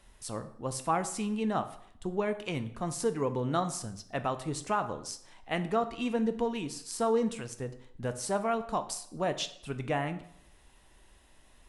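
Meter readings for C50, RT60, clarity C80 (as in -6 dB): 13.5 dB, 0.70 s, 16.5 dB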